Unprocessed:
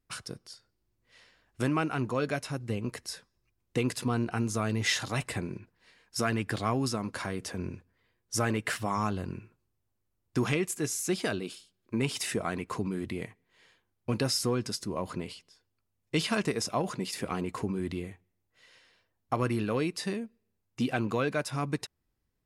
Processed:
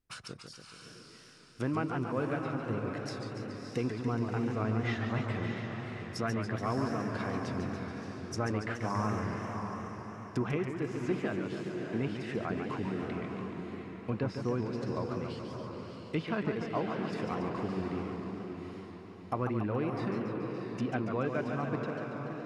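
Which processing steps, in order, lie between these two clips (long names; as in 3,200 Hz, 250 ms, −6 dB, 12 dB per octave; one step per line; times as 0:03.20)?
treble cut that deepens with the level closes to 1,800 Hz, closed at −29 dBFS
feedback delay with all-pass diffusion 634 ms, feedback 40%, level −5.5 dB
feedback echo with a swinging delay time 142 ms, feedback 71%, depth 178 cents, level −7 dB
level −4 dB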